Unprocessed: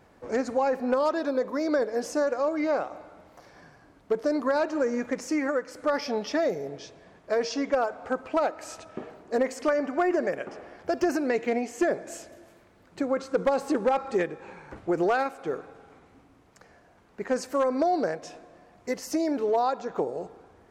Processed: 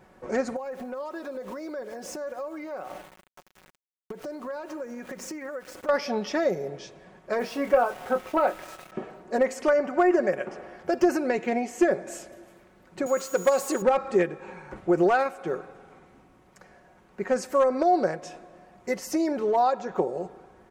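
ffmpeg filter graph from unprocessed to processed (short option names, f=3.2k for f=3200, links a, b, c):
-filter_complex "[0:a]asettb=1/sr,asplit=3[a][b][c];[a]atrim=end=0.564[d];[b]atrim=start=0.56:end=5.89,asetpts=PTS-STARTPTS,afade=t=in:d=0.004:c=qsin,afade=t=out:st=5.326:d=0.004:c=qsin,aeval=exprs='val(0)*gte(abs(val(0)),0.00631)':c=same,acompressor=threshold=-34dB:ratio=12:attack=3.2:release=140:knee=1:detection=peak[e];[c]atrim=start=5.886[f];[d][e]acrossfade=d=0.004:c1=hsin:c2=qsin[g];[g][f]acrossfade=d=0.004:c1=qsin:c2=hsin,asettb=1/sr,asplit=3[h][i][j];[h]atrim=end=7.394[k];[i]atrim=start=7.39:end=8.92,asetpts=PTS-STARTPTS,afade=t=in:d=0.004:c=qsin,afade=t=out:st=1.526:d=0.004:c=qsin,lowpass=3.3k,aeval=exprs='val(0)*gte(abs(val(0)),0.0075)':c=same,asplit=2[l][m];[m]adelay=25,volume=-8dB[n];[l][n]amix=inputs=2:normalize=0,atrim=end_sample=67473[o];[j]atrim=start=8.916[p];[k][o]acrossfade=d=0.004:c1=hsin:c2=qsin[q];[q][p]acrossfade=d=0.004:c1=qsin:c2=hsin,asettb=1/sr,asplit=3[r][s][t];[r]atrim=end=13.064[u];[s]atrim=start=13.06:end=13.82,asetpts=PTS-STARTPTS,afade=t=in:d=0.004:c=qsin,afade=t=out:st=0.756:d=0.004:c=qsin,aemphasis=mode=production:type=bsi,aeval=exprs='val(0)+0.00891*sin(2*PI*6800*n/s)':c=same,aeval=exprs='val(0)*gte(abs(val(0)),0.0075)':c=same[v];[t]atrim=start=13.816[w];[u][v]acrossfade=d=0.004:c1=hsin:c2=qsin[x];[x][w]acrossfade=d=0.004:c1=qsin:c2=hsin,equalizer=f=4.5k:w=1.4:g=-3.5,aecho=1:1:5.4:0.48,volume=1.5dB"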